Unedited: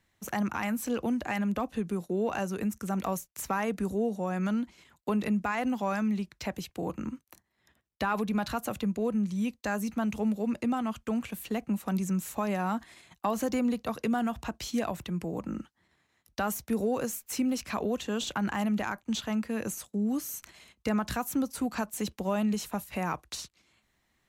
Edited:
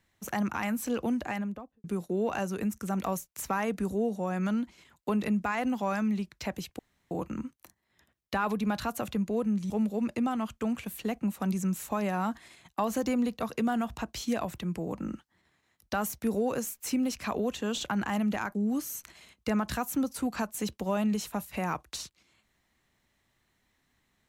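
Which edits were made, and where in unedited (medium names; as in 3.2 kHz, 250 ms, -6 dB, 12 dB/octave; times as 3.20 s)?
1.16–1.84 s: studio fade out
6.79 s: insert room tone 0.32 s
9.38–10.16 s: delete
19.00–19.93 s: delete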